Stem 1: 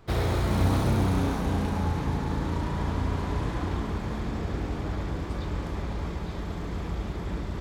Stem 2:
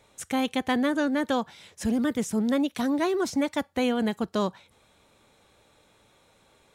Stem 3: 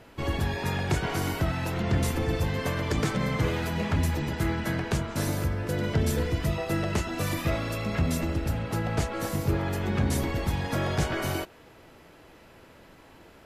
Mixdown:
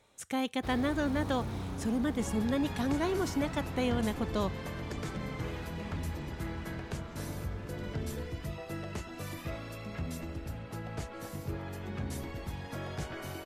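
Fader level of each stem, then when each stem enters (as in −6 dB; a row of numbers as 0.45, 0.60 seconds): −13.5, −6.0, −11.5 decibels; 0.55, 0.00, 2.00 seconds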